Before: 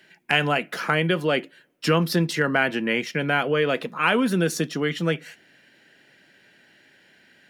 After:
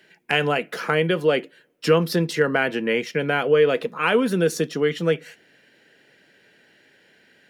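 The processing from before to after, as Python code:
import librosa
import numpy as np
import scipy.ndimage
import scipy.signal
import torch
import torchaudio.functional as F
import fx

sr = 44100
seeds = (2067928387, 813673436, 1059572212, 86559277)

y = fx.peak_eq(x, sr, hz=460.0, db=8.0, octaves=0.4)
y = F.gain(torch.from_numpy(y), -1.0).numpy()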